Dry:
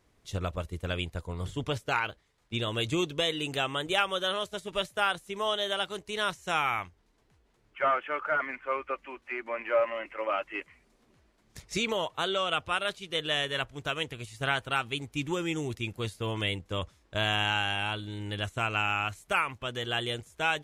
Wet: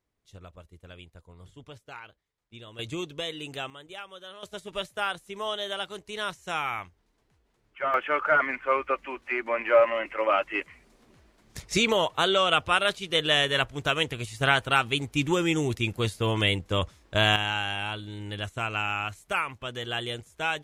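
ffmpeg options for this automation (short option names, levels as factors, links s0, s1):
-af "asetnsamples=n=441:p=0,asendcmd='2.79 volume volume -5dB;3.7 volume volume -14.5dB;4.43 volume volume -2dB;7.94 volume volume 6.5dB;17.36 volume volume -0.5dB',volume=0.188"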